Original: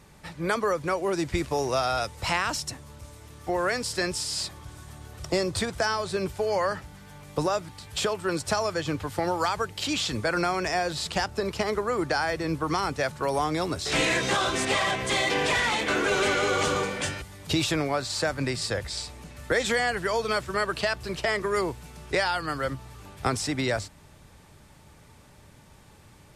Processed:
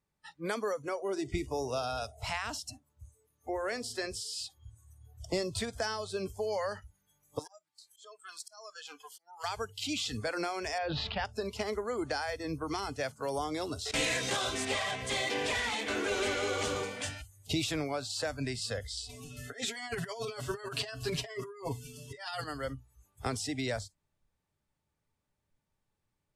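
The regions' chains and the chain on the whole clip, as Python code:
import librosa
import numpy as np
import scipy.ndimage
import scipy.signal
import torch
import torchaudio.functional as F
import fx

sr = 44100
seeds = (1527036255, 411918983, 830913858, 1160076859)

y = fx.chain(x, sr, fx.high_shelf(hz=2700.0, db=-3.0),
    fx.echo_wet_lowpass(ms=66, feedback_pct=75, hz=630.0, wet_db=-17.5), at=(0.89, 5.29))
y = fx.chain(y, sr, fx.highpass(hz=1200.0, slope=6),
    fx.auto_swell(attack_ms=438.0),
    fx.transformer_sat(knee_hz=1900.0), at=(7.39, 9.44))
y = fx.chain(y, sr, fx.lowpass(hz=3600.0, slope=24),
    fx.sustainer(db_per_s=20.0), at=(10.78, 11.25))
y = fx.chain(y, sr, fx.gate_hold(open_db=-16.0, close_db=-23.0, hold_ms=71.0, range_db=-21, attack_ms=1.4, release_ms=100.0),
    fx.high_shelf(hz=4500.0, db=5.0), at=(13.91, 14.54))
y = fx.chain(y, sr, fx.comb(ms=7.3, depth=0.9),
    fx.over_compress(threshold_db=-29.0, ratio=-0.5), at=(19.09, 22.44))
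y = fx.noise_reduce_blind(y, sr, reduce_db=25)
y = fx.dynamic_eq(y, sr, hz=1200.0, q=1.2, threshold_db=-41.0, ratio=4.0, max_db=-5)
y = F.gain(torch.from_numpy(y), -6.0).numpy()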